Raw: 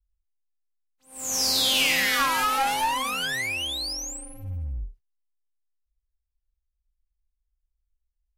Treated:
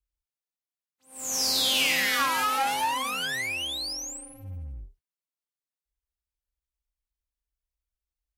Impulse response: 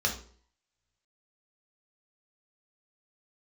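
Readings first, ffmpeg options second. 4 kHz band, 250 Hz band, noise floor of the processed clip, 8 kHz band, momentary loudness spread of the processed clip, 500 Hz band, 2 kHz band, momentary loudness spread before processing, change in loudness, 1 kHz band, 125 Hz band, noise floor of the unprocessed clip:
−2.0 dB, −2.5 dB, below −85 dBFS, −2.0 dB, 18 LU, −2.0 dB, −2.0 dB, 16 LU, −2.0 dB, −2.0 dB, −6.0 dB, −81 dBFS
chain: -af "highpass=frequency=100:poles=1,volume=-2dB"

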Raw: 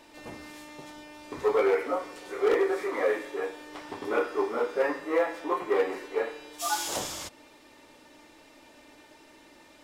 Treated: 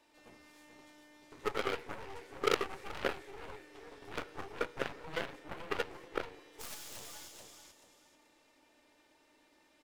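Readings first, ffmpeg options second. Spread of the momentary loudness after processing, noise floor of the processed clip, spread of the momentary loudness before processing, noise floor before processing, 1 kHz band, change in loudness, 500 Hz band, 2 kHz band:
22 LU, −69 dBFS, 19 LU, −55 dBFS, −9.5 dB, −11.0 dB, −13.5 dB, −7.0 dB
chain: -filter_complex "[0:a]lowshelf=frequency=330:gain=-4,acrossover=split=670|1500[link_01][link_02][link_03];[link_02]acompressor=threshold=-51dB:ratio=6[link_04];[link_01][link_04][link_03]amix=inputs=3:normalize=0,aecho=1:1:434|868|1302:0.501|0.13|0.0339,aeval=exprs='0.178*(cos(1*acos(clip(val(0)/0.178,-1,1)))-cos(1*PI/2))+0.0708*(cos(3*acos(clip(val(0)/0.178,-1,1)))-cos(3*PI/2))+0.00224*(cos(5*acos(clip(val(0)/0.178,-1,1)))-cos(5*PI/2))+0.00355*(cos(8*acos(clip(val(0)/0.178,-1,1)))-cos(8*PI/2))':channel_layout=same,volume=4dB"

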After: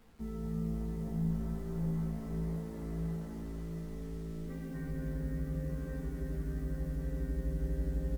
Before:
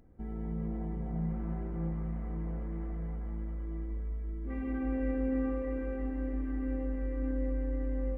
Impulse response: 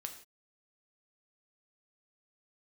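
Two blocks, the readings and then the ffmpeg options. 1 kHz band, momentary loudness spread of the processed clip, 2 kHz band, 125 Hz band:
−5.5 dB, 7 LU, −4.5 dB, +1.5 dB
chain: -filter_complex "[0:a]aecho=1:1:4.6:0.53,acrossover=split=230[link_01][link_02];[link_02]acompressor=threshold=-43dB:ratio=6[link_03];[link_01][link_03]amix=inputs=2:normalize=0,acrusher=bits=9:mix=0:aa=0.000001,asplit=9[link_04][link_05][link_06][link_07][link_08][link_09][link_10][link_11][link_12];[link_05]adelay=238,afreqshift=-110,volume=-5.5dB[link_13];[link_06]adelay=476,afreqshift=-220,volume=-10.4dB[link_14];[link_07]adelay=714,afreqshift=-330,volume=-15.3dB[link_15];[link_08]adelay=952,afreqshift=-440,volume=-20.1dB[link_16];[link_09]adelay=1190,afreqshift=-550,volume=-25dB[link_17];[link_10]adelay=1428,afreqshift=-660,volume=-29.9dB[link_18];[link_11]adelay=1666,afreqshift=-770,volume=-34.8dB[link_19];[link_12]adelay=1904,afreqshift=-880,volume=-39.7dB[link_20];[link_04][link_13][link_14][link_15][link_16][link_17][link_18][link_19][link_20]amix=inputs=9:normalize=0,asplit=2[link_21][link_22];[1:a]atrim=start_sample=2205,asetrate=35280,aresample=44100,adelay=13[link_23];[link_22][link_23]afir=irnorm=-1:irlink=0,volume=3.5dB[link_24];[link_21][link_24]amix=inputs=2:normalize=0,volume=-6dB"

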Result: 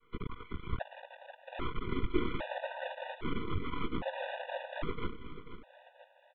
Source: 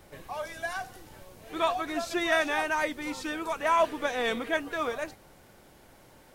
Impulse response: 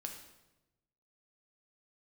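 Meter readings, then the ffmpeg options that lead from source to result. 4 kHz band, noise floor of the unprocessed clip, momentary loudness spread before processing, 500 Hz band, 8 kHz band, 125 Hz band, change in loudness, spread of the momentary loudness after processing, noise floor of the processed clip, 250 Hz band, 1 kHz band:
−10.5 dB, −56 dBFS, 13 LU, −10.0 dB, below −35 dB, +10.5 dB, −10.0 dB, 16 LU, −65 dBFS, −4.0 dB, −12.0 dB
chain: -filter_complex "[0:a]aemphasis=mode=reproduction:type=bsi,agate=range=-33dB:threshold=-45dB:ratio=3:detection=peak,lowshelf=frequency=77:gain=3.5,acrossover=split=560[link_01][link_02];[link_01]acrusher=bits=4:mix=0:aa=0.000001[link_03];[link_02]acompressor=threshold=-41dB:ratio=6[link_04];[link_03][link_04]amix=inputs=2:normalize=0,afftfilt=real='hypot(re,im)*cos(2*PI*random(0))':imag='hypot(re,im)*sin(2*PI*random(1))':win_size=512:overlap=0.75,flanger=delay=18:depth=6.4:speed=2.2,afreqshift=-23,aeval=exprs='max(val(0),0)':channel_layout=same,aecho=1:1:488|976|1464|1952|2440:0.237|0.111|0.0524|0.0246|0.0116,aresample=8000,aresample=44100,afftfilt=real='re*gt(sin(2*PI*0.62*pts/sr)*(1-2*mod(floor(b*sr/1024/490),2)),0)':imag='im*gt(sin(2*PI*0.62*pts/sr)*(1-2*mod(floor(b*sr/1024/490),2)),0)':win_size=1024:overlap=0.75,volume=9dB"

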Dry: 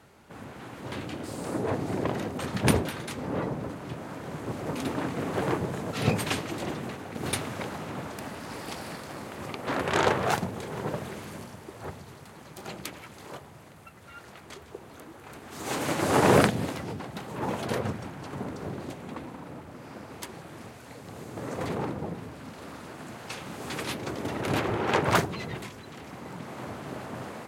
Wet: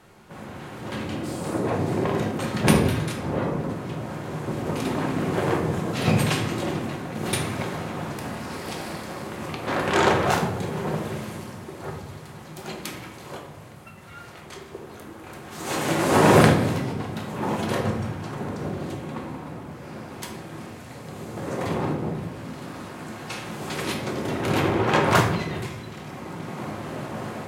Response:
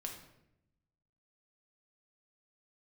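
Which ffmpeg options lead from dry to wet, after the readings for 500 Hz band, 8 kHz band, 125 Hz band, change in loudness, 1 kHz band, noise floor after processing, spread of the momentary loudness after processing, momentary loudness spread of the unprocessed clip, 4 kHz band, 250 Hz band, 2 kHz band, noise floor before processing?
+5.0 dB, +4.0 dB, +7.0 dB, +5.5 dB, +5.0 dB, −42 dBFS, 19 LU, 20 LU, +4.5 dB, +6.0 dB, +4.5 dB, −49 dBFS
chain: -filter_complex "[1:a]atrim=start_sample=2205[link_01];[0:a][link_01]afir=irnorm=-1:irlink=0,volume=6.5dB"

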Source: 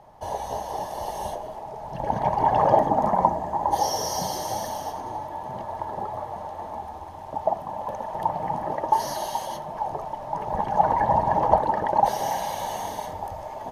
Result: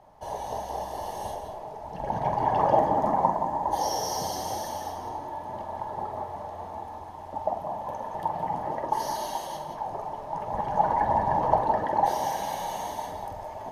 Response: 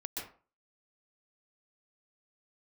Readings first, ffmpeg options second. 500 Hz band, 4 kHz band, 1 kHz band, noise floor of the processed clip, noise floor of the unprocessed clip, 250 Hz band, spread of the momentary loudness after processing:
−3.0 dB, −3.0 dB, −3.0 dB, −40 dBFS, −38 dBFS, −2.5 dB, 14 LU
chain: -filter_complex "[0:a]flanger=delay=2.9:depth=9.8:regen=-59:speed=0.54:shape=triangular,asplit=2[link_01][link_02];[1:a]atrim=start_sample=2205,adelay=46[link_03];[link_02][link_03]afir=irnorm=-1:irlink=0,volume=-5dB[link_04];[link_01][link_04]amix=inputs=2:normalize=0"

